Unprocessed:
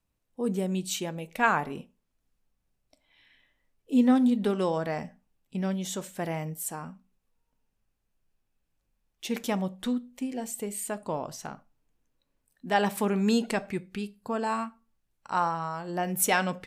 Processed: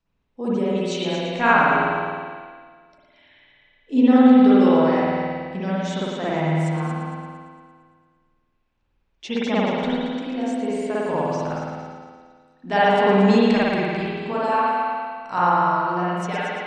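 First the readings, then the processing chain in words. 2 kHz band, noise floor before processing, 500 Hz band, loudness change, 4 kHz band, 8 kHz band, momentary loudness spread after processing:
+9.0 dB, -78 dBFS, +10.5 dB, +9.0 dB, +7.0 dB, n/a, 14 LU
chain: ending faded out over 1.04 s; LPF 6000 Hz 24 dB/oct; reverb removal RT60 0.62 s; multi-head echo 0.114 s, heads first and second, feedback 48%, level -10 dB; spring tank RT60 1.7 s, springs 51 ms, chirp 50 ms, DRR -8.5 dB; gain +1 dB

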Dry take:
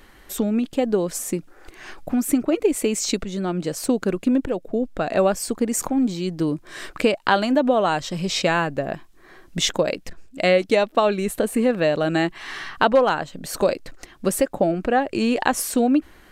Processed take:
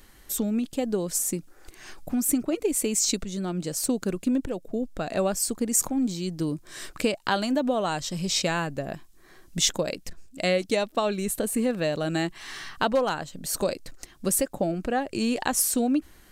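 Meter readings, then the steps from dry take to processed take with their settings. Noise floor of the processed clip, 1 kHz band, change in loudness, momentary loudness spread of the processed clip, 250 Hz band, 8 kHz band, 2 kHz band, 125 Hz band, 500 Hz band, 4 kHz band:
-53 dBFS, -7.5 dB, -4.5 dB, 9 LU, -5.0 dB, +2.5 dB, -7.0 dB, -3.5 dB, -7.0 dB, -2.5 dB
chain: tone controls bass +5 dB, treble +11 dB; gain -7.5 dB

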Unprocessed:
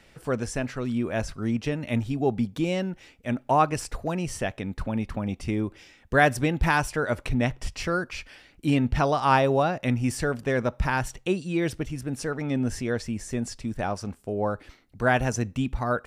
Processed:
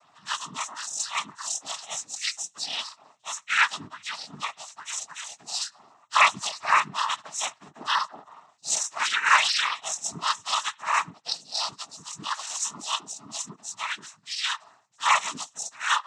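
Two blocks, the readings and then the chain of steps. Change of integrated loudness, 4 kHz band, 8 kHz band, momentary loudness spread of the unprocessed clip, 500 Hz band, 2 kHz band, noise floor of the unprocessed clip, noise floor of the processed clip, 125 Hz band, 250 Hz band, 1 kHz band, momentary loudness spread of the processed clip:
0.0 dB, +11.5 dB, +10.0 dB, 9 LU, -18.0 dB, +3.0 dB, -57 dBFS, -62 dBFS, -24.5 dB, -23.0 dB, +1.0 dB, 14 LU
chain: spectrum mirrored in octaves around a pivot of 1300 Hz; resonant low shelf 730 Hz -13.5 dB, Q 3; noise vocoder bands 12; gain +1 dB

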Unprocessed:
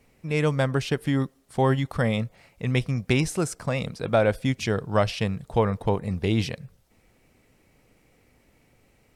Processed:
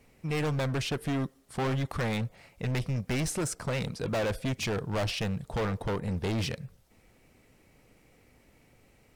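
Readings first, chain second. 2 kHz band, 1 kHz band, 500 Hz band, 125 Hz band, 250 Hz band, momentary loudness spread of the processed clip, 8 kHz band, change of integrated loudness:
-5.0 dB, -7.0 dB, -8.0 dB, -5.5 dB, -6.5 dB, 4 LU, -0.5 dB, -6.0 dB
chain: overloaded stage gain 27 dB

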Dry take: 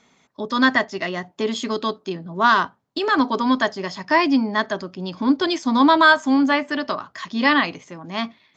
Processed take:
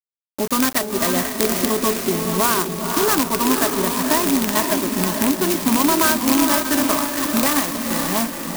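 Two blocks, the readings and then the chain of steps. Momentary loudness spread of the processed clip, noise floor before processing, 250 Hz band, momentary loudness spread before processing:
5 LU, -62 dBFS, +1.0 dB, 13 LU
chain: rattling part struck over -26 dBFS, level -7 dBFS; compressor 4:1, threshold -24 dBFS, peak gain reduction 12.5 dB; bit-crush 6-bit; on a send: diffused feedback echo 0.505 s, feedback 48%, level -4 dB; on the sum: clock jitter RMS 0.11 ms; gain +7 dB

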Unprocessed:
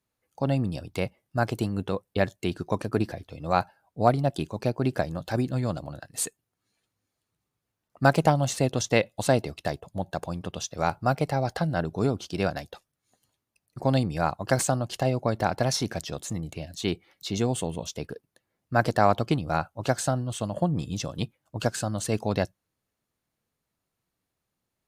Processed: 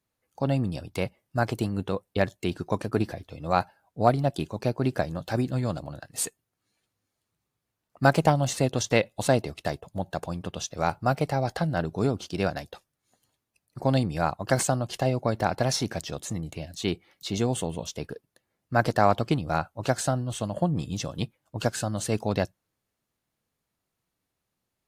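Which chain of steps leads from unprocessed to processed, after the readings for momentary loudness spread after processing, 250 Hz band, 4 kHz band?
11 LU, 0.0 dB, 0.0 dB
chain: AAC 64 kbps 48000 Hz

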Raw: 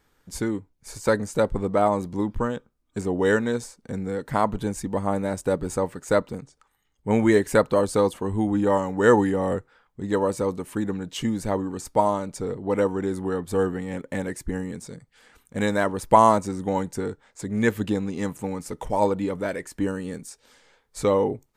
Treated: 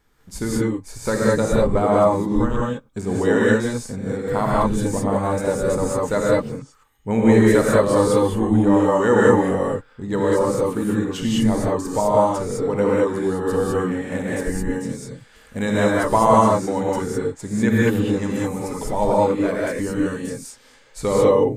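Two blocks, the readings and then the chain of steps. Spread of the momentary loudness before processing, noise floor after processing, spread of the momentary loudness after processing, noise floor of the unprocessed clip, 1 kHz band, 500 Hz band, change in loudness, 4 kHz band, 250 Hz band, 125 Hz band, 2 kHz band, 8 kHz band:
14 LU, -52 dBFS, 12 LU, -68 dBFS, +3.0 dB, +5.0 dB, +5.0 dB, +5.0 dB, +6.0 dB, +6.5 dB, +4.5 dB, +5.5 dB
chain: in parallel at -3 dB: limiter -14 dBFS, peak gain reduction 11 dB; on the sum: low shelf 89 Hz +6.5 dB; non-linear reverb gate 0.23 s rising, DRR -5.5 dB; gain -5.5 dB

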